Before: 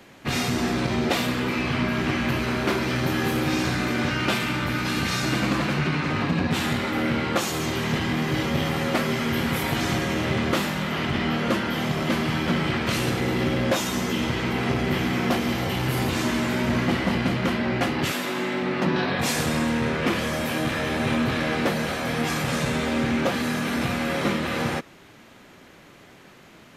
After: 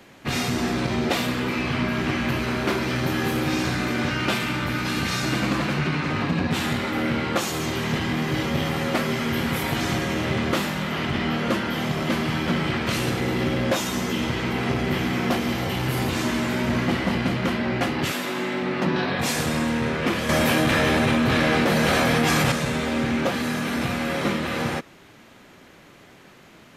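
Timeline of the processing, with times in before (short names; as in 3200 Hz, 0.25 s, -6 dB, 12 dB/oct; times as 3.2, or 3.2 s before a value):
20.29–22.52 fast leveller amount 100%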